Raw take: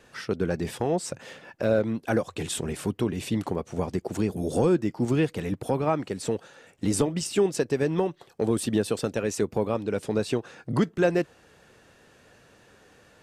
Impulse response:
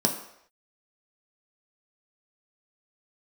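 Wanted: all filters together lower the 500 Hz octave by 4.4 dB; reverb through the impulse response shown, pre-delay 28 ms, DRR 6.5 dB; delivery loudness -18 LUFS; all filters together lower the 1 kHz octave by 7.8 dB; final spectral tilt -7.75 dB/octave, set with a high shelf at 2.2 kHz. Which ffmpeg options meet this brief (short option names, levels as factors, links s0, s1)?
-filter_complex "[0:a]equalizer=f=500:t=o:g=-3.5,equalizer=f=1000:t=o:g=-9,highshelf=f=2200:g=-3,asplit=2[s0][s1];[1:a]atrim=start_sample=2205,adelay=28[s2];[s1][s2]afir=irnorm=-1:irlink=0,volume=0.133[s3];[s0][s3]amix=inputs=2:normalize=0,volume=2.66"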